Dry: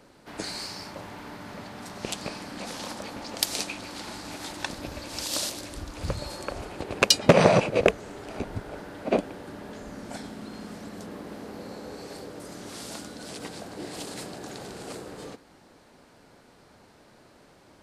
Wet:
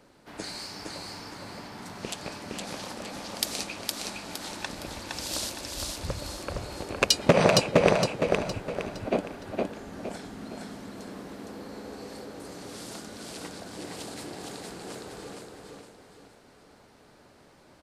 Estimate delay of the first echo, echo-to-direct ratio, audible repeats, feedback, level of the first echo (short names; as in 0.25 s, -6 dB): 0.463 s, -2.5 dB, 4, 39%, -3.0 dB